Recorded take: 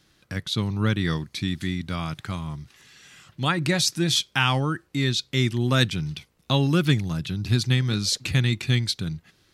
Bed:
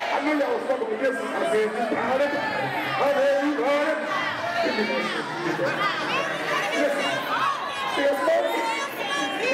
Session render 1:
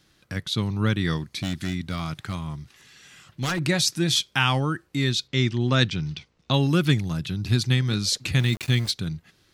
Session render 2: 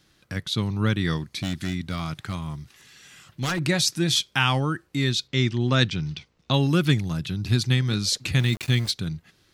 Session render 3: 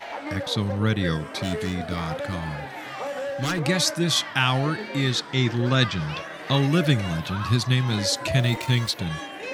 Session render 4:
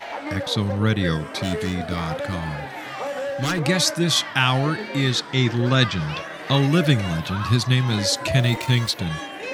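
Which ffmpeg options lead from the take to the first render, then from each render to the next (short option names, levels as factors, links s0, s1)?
-filter_complex "[0:a]asettb=1/sr,asplit=3[s0][s1][s2];[s0]atrim=end=1.354[s3];[s1]atrim=start=1.35:end=3.65,asetpts=PTS-STARTPTS,afade=t=in:d=0.004:c=qsin,afade=t=out:st=2.296:d=0.004:c=qsin,aeval=exprs='0.1*(abs(mod(val(0)/0.1+3,4)-2)-1)':c=same[s4];[s2]atrim=start=3.646[s5];[s3][s4]acrossfade=d=0.004:c1=hsin:c2=qsin[s6];[s6][s5]acrossfade=d=0.004:c1=qsin:c2=hsin,asplit=3[s7][s8][s9];[s7]afade=t=out:st=5.27:d=0.02[s10];[s8]lowpass=f=6500:w=0.5412,lowpass=f=6500:w=1.3066,afade=t=in:st=5.27:d=0.02,afade=t=out:st=6.52:d=0.02[s11];[s9]afade=t=in:st=6.52:d=0.02[s12];[s10][s11][s12]amix=inputs=3:normalize=0,asplit=3[s13][s14][s15];[s13]afade=t=out:st=8.38:d=0.02[s16];[s14]aeval=exprs='val(0)*gte(abs(val(0)),0.0188)':c=same,afade=t=in:st=8.38:d=0.02,afade=t=out:st=8.9:d=0.02[s17];[s15]afade=t=in:st=8.9:d=0.02[s18];[s16][s17][s18]amix=inputs=3:normalize=0"
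-filter_complex "[0:a]asettb=1/sr,asplit=3[s0][s1][s2];[s0]atrim=end=2.424[s3];[s1]atrim=start=2.42:end=3.4,asetpts=PTS-STARTPTS,afade=t=in:d=0.004:c=qsin,afade=t=out:st=0.976:d=0.004:c=qsin,highshelf=f=10000:g=6[s4];[s2]atrim=start=3.396[s5];[s3][s4]acrossfade=d=0.004:c1=hsin:c2=qsin[s6];[s6][s5]acrossfade=d=0.004:c1=qsin:c2=hsin"
-filter_complex "[1:a]volume=0.335[s0];[0:a][s0]amix=inputs=2:normalize=0"
-af "volume=1.33"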